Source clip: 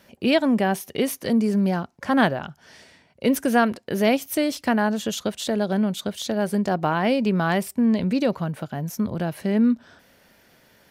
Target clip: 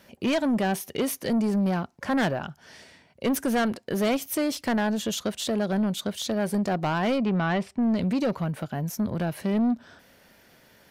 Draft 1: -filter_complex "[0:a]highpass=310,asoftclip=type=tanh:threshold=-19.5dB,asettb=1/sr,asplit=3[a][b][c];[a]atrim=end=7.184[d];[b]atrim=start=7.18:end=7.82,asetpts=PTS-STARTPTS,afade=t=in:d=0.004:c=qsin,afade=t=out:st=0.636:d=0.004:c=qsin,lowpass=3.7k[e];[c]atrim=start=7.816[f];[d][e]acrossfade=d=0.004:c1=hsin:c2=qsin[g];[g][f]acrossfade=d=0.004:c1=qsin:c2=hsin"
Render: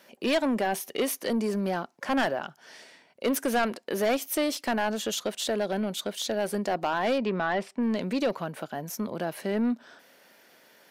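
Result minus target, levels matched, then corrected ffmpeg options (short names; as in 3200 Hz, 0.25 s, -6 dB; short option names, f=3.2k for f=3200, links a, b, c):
250 Hz band -2.5 dB
-filter_complex "[0:a]asoftclip=type=tanh:threshold=-19.5dB,asettb=1/sr,asplit=3[a][b][c];[a]atrim=end=7.184[d];[b]atrim=start=7.18:end=7.82,asetpts=PTS-STARTPTS,afade=t=in:d=0.004:c=qsin,afade=t=out:st=0.636:d=0.004:c=qsin,lowpass=3.7k[e];[c]atrim=start=7.816[f];[d][e]acrossfade=d=0.004:c1=hsin:c2=qsin[g];[g][f]acrossfade=d=0.004:c1=qsin:c2=hsin"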